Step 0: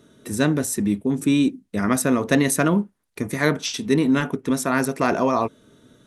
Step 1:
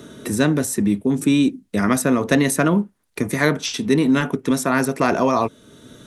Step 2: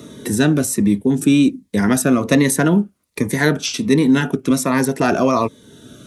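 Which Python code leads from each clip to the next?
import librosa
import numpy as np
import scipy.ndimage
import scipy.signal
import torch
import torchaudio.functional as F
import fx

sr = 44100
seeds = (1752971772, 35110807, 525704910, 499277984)

y1 = fx.band_squash(x, sr, depth_pct=40)
y1 = y1 * 10.0 ** (2.0 / 20.0)
y2 = scipy.signal.sosfilt(scipy.signal.butter(2, 43.0, 'highpass', fs=sr, output='sos'), y1)
y2 = fx.notch_cascade(y2, sr, direction='falling', hz=1.3)
y2 = y2 * 10.0 ** (3.5 / 20.0)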